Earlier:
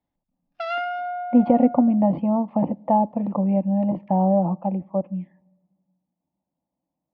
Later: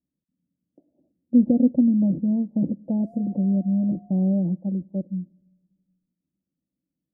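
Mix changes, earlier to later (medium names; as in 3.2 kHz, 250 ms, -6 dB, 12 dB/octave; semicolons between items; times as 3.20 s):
background: entry +2.40 s; master: add inverse Chebyshev band-stop 1.3–3.7 kHz, stop band 70 dB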